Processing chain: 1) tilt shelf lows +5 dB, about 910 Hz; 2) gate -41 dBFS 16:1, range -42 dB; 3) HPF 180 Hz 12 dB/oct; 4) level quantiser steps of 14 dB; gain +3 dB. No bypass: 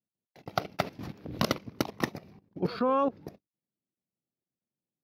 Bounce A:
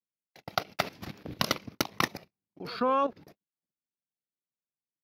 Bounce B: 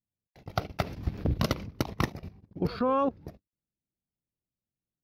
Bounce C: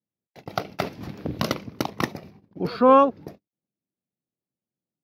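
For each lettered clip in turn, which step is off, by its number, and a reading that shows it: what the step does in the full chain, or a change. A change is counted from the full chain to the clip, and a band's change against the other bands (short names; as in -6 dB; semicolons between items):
1, 125 Hz band -7.0 dB; 3, 125 Hz band +7.5 dB; 4, crest factor change -5.0 dB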